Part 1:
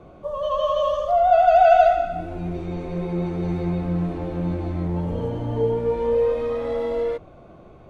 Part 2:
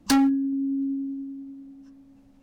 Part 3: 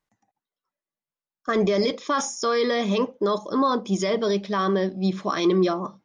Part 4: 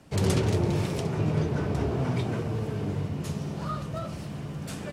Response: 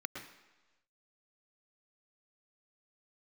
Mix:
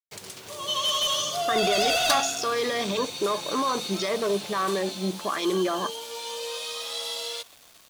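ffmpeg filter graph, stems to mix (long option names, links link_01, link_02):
-filter_complex "[0:a]highpass=1200,aexciter=amount=13.8:drive=6.3:freq=3100,asoftclip=type=hard:threshold=-20.5dB,adelay=250,volume=-8.5dB,asplit=2[link_01][link_02];[link_02]volume=-18.5dB[link_03];[1:a]highpass=frequency=560:width=0.5412,highpass=frequency=560:width=1.3066,adelay=2000,volume=-6.5dB[link_04];[2:a]highpass=frequency=700:poles=1,afwtdn=0.0158,alimiter=limit=-24dB:level=0:latency=1,volume=-1.5dB[link_05];[3:a]highpass=frequency=1400:poles=1,highshelf=frequency=3900:gain=8,acompressor=threshold=-40dB:ratio=4,volume=-7.5dB[link_06];[4:a]atrim=start_sample=2205[link_07];[link_03][link_07]afir=irnorm=-1:irlink=0[link_08];[link_01][link_04][link_05][link_06][link_08]amix=inputs=5:normalize=0,acontrast=83,acrusher=bits=7:mix=0:aa=0.000001"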